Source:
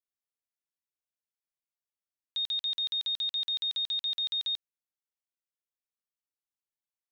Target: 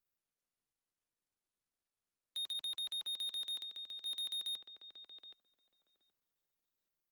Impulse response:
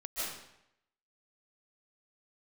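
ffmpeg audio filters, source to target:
-filter_complex "[0:a]asplit=3[s0][s1][s2];[s0]afade=t=out:st=2.53:d=0.02[s3];[s1]lowpass=f=4800:w=0.5412,lowpass=f=4800:w=1.3066,afade=t=in:st=2.53:d=0.02,afade=t=out:st=3.05:d=0.02[s4];[s2]afade=t=in:st=3.05:d=0.02[s5];[s3][s4][s5]amix=inputs=3:normalize=0,acrossover=split=180 2000:gain=0.112 1 0.224[s6][s7][s8];[s6][s7][s8]amix=inputs=3:normalize=0,asplit=2[s9][s10];[s10]adelay=773,lowpass=f=1100:p=1,volume=0.562,asplit=2[s11][s12];[s12]adelay=773,lowpass=f=1100:p=1,volume=0.2,asplit=2[s13][s14];[s14]adelay=773,lowpass=f=1100:p=1,volume=0.2[s15];[s11][s13][s15]amix=inputs=3:normalize=0[s16];[s9][s16]amix=inputs=2:normalize=0,asettb=1/sr,asplit=3[s17][s18][s19];[s17]atrim=end=3.584[s20];[s18]atrim=start=3.58:end=4.06,asetpts=PTS-STARTPTS,afade=t=in:d=0.004:c=qsin,afade=t=out:st=0.476:d=0.004:c=qsin,acompressor=threshold=0.00398:ratio=10[s21];[s19]atrim=start=4.056[s22];[s20][s21]acrossfade=d=0.004:c1=hsin:c2=qsin[s23];[s23][s22]acrossfade=d=0.004:c1=qsin:c2=hsin,acrossover=split=480[s24][s25];[s24]aeval=exprs='0.00106*sin(PI/2*1.41*val(0)/0.00106)':c=same[s26];[s26][s25]amix=inputs=2:normalize=0,bandreject=f=980:w=6.4,asoftclip=type=tanh:threshold=0.0126,aemphasis=mode=production:type=bsi" -ar 48000 -c:a libopus -b:a 32k

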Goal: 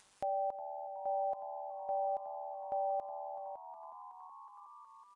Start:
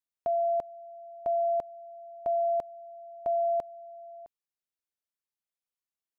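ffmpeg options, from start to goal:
-filter_complex "[0:a]bandreject=f=1100:w=27,aeval=exprs='val(0)*sin(2*PI*100*n/s)':c=same,equalizer=f=980:w=1.6:g=6,alimiter=level_in=1.88:limit=0.0631:level=0:latency=1:release=65,volume=0.531,asplit=2[s0][s1];[s1]asplit=5[s2][s3][s4][s5][s6];[s2]adelay=443,afreqshift=80,volume=0.188[s7];[s3]adelay=886,afreqshift=160,volume=0.1[s8];[s4]adelay=1329,afreqshift=240,volume=0.0531[s9];[s5]adelay=1772,afreqshift=320,volume=0.0282[s10];[s6]adelay=2215,afreqshift=400,volume=0.0148[s11];[s7][s8][s9][s10][s11]amix=inputs=5:normalize=0[s12];[s0][s12]amix=inputs=2:normalize=0,aresample=22050,aresample=44100,atempo=1.2,acompressor=mode=upward:threshold=0.00794:ratio=2.5,volume=1.12"

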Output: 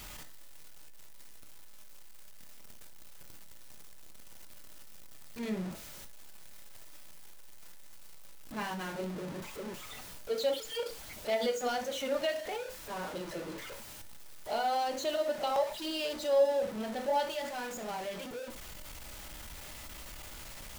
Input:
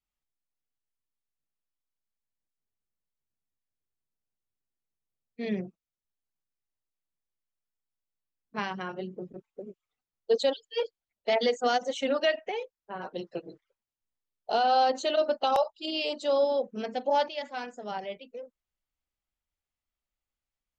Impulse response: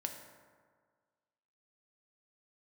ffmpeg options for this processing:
-filter_complex "[0:a]aeval=exprs='val(0)+0.5*0.0355*sgn(val(0))':c=same[s0];[1:a]atrim=start_sample=2205,atrim=end_sample=3528[s1];[s0][s1]afir=irnorm=-1:irlink=0,volume=0.447"

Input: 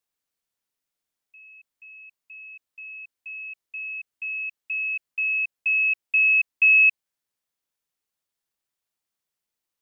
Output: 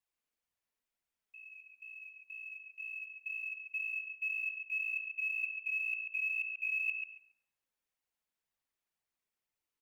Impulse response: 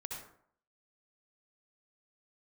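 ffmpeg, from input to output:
-filter_complex "[0:a]flanger=delay=1:depth=3.7:regen=1:speed=2:shape=sinusoidal,areverse,acompressor=threshold=0.0251:ratio=10,areverse,equalizer=f=2400:t=o:w=0.73:g=4,acrusher=bits=9:mode=log:mix=0:aa=0.000001,asplit=2[s0][s1];[s1]adelay=139,lowpass=f=2400:p=1,volume=0.631,asplit=2[s2][s3];[s3]adelay=139,lowpass=f=2400:p=1,volume=0.23,asplit=2[s4][s5];[s5]adelay=139,lowpass=f=2400:p=1,volume=0.23[s6];[s0][s2][s4][s6]amix=inputs=4:normalize=0,asplit=2[s7][s8];[1:a]atrim=start_sample=2205,asetrate=42777,aresample=44100,lowpass=2500[s9];[s8][s9]afir=irnorm=-1:irlink=0,volume=0.596[s10];[s7][s10]amix=inputs=2:normalize=0,volume=0.596"

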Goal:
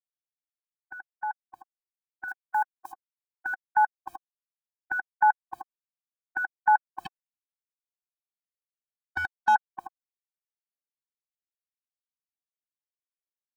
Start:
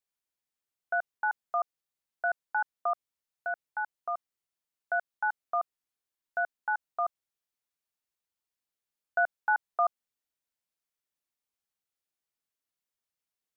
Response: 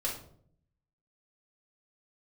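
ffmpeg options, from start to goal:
-filter_complex "[0:a]acrusher=bits=10:mix=0:aa=0.000001,alimiter=level_in=1.58:limit=0.0631:level=0:latency=1,volume=0.631,lowshelf=f=350:g=9,dynaudnorm=f=340:g=17:m=4.47,asettb=1/sr,asplit=3[s0][s1][s2];[s0]atrim=end=2.284[s3];[s1]atrim=start=2.28:end=2.92,asetpts=PTS-STARTPTS,afade=t=in:d=0.004:c=qsin,afade=t=out:st=0.636:d=0.004:c=qsin,bass=f=250:g=-5,treble=f=4000:g=14[s4];[s2]atrim=start=2.916[s5];[s3][s4]acrossfade=d=0.004:c1=hsin:c2=qsin[s6];[s6][s5]acrossfade=d=0.004:c1=qsin:c2=hsin,asettb=1/sr,asplit=3[s7][s8][s9];[s7]atrim=end=7.054[s10];[s8]atrim=start=7.05:end=9.55,asetpts=PTS-STARTPTS,afade=t=in:d=0.004:c=qsin,afade=t=out:st=2.496:d=0.004:c=qsin,asoftclip=type=hard:threshold=0.158[s11];[s9]atrim=start=9.546[s12];[s10][s11]acrossfade=d=0.004:c1=hsin:c2=qsin[s13];[s13][s12]acrossfade=d=0.004:c1=qsin:c2=hsin,afftfilt=real='re*eq(mod(floor(b*sr/1024/370),2),0)':imag='im*eq(mod(floor(b*sr/1024/370),2),0)':win_size=1024:overlap=0.75,volume=1.78"

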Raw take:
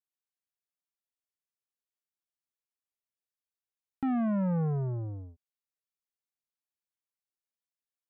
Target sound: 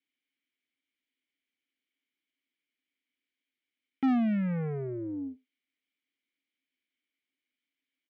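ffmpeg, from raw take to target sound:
-filter_complex "[0:a]asplit=3[s0][s1][s2];[s0]bandpass=f=270:t=q:w=8,volume=1[s3];[s1]bandpass=f=2290:t=q:w=8,volume=0.501[s4];[s2]bandpass=f=3010:t=q:w=8,volume=0.355[s5];[s3][s4][s5]amix=inputs=3:normalize=0,asplit=2[s6][s7];[s7]highpass=f=720:p=1,volume=31.6,asoftclip=type=tanh:threshold=0.0562[s8];[s6][s8]amix=inputs=2:normalize=0,lowpass=f=1700:p=1,volume=0.501,asplit=2[s9][s10];[s10]adelay=90,highpass=300,lowpass=3400,asoftclip=type=hard:threshold=0.02,volume=0.0631[s11];[s9][s11]amix=inputs=2:normalize=0,volume=1.88"

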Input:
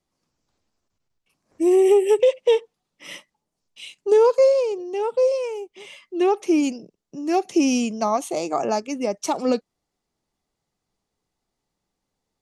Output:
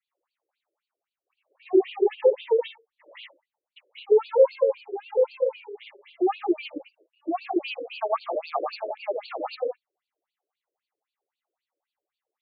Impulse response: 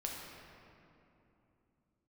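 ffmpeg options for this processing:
-filter_complex "[0:a]asettb=1/sr,asplit=3[s0][s1][s2];[s0]atrim=end=7.234[s3];[s1]atrim=start=7.23:end=8.87,asetpts=PTS-STARTPTS,afade=t=in:d=0.004:c=qsin,afade=t=out:st=1.636:d=0.004:c=qsin,lowpass=f=6600:t=q:w=4.9[s4];[s2]atrim=start=8.866[s5];[s3][s4]acrossfade=d=0.004:c1=hsin:c2=qsin[s6];[s6][s5]acrossfade=d=0.004:c1=qsin:c2=hsin,asubboost=boost=6:cutoff=74,asplit=2[s7][s8];[1:a]atrim=start_sample=2205,atrim=end_sample=3969,adelay=111[s9];[s8][s9]afir=irnorm=-1:irlink=0,volume=0.794[s10];[s7][s10]amix=inputs=2:normalize=0,afftfilt=real='re*between(b*sr/1024,420*pow(3400/420,0.5+0.5*sin(2*PI*3.8*pts/sr))/1.41,420*pow(3400/420,0.5+0.5*sin(2*PI*3.8*pts/sr))*1.41)':imag='im*between(b*sr/1024,420*pow(3400/420,0.5+0.5*sin(2*PI*3.8*pts/sr))/1.41,420*pow(3400/420,0.5+0.5*sin(2*PI*3.8*pts/sr))*1.41)':win_size=1024:overlap=0.75"

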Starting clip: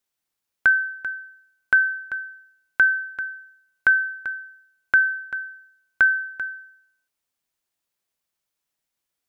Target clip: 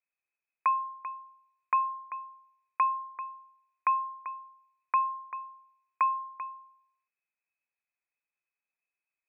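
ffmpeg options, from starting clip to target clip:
-af "aemphasis=mode=reproduction:type=riaa,lowpass=f=2200:t=q:w=0.5098,lowpass=f=2200:t=q:w=0.6013,lowpass=f=2200:t=q:w=0.9,lowpass=f=2200:t=q:w=2.563,afreqshift=-2600,volume=0.422"

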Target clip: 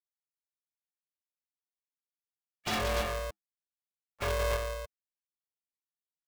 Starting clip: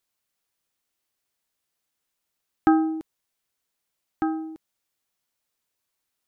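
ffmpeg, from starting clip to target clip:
-filter_complex "[0:a]afftfilt=real='re*gte(hypot(re,im),0.01)':imag='im*gte(hypot(re,im),0.01)':win_size=1024:overlap=0.75,equalizer=f=61:w=5.8:g=-7.5,acompressor=mode=upward:threshold=0.0282:ratio=2.5,bass=f=250:g=1,treble=f=4000:g=-9,aecho=1:1:6.1:0.89,aeval=exprs='0.1*(abs(mod(val(0)/0.1+3,4)-2)-1)':c=same,asplit=2[s0][s1];[s1]asetrate=33038,aresample=44100,atempo=1.33484,volume=0.126[s2];[s0][s2]amix=inputs=2:normalize=0,asoftclip=type=tanh:threshold=0.0376,asplit=2[s3][s4];[s4]aecho=0:1:50|57|58|176|290:0.447|0.126|0.422|0.473|0.596[s5];[s3][s5]amix=inputs=2:normalize=0,aeval=exprs='val(0)*sgn(sin(2*PI*260*n/s))':c=same,volume=0.891"

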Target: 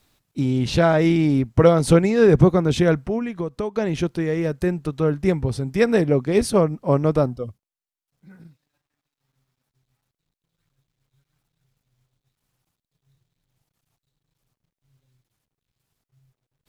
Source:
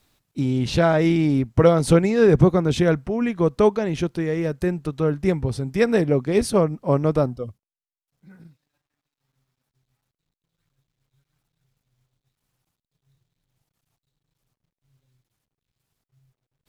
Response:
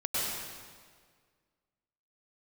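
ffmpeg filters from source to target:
-filter_complex "[0:a]asplit=3[s0][s1][s2];[s0]afade=t=out:st=3.18:d=0.02[s3];[s1]acompressor=threshold=0.0562:ratio=6,afade=t=in:st=3.18:d=0.02,afade=t=out:st=3.75:d=0.02[s4];[s2]afade=t=in:st=3.75:d=0.02[s5];[s3][s4][s5]amix=inputs=3:normalize=0,volume=1.12"

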